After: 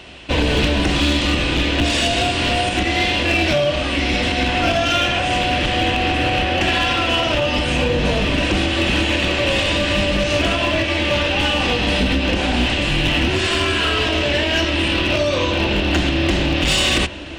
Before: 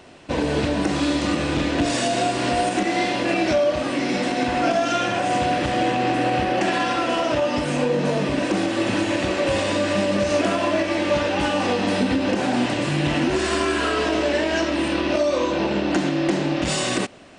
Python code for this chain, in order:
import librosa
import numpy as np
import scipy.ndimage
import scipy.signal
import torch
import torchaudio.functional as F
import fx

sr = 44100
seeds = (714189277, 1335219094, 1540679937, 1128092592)

y = fx.octave_divider(x, sr, octaves=2, level_db=2.0)
y = fx.peak_eq(y, sr, hz=3000.0, db=12.0, octaves=1.1)
y = fx.rider(y, sr, range_db=4, speed_s=2.0)
y = fx.echo_diffused(y, sr, ms=1327, feedback_pct=42, wet_db=-16)
y = np.clip(10.0 ** (10.5 / 20.0) * y, -1.0, 1.0) / 10.0 ** (10.5 / 20.0)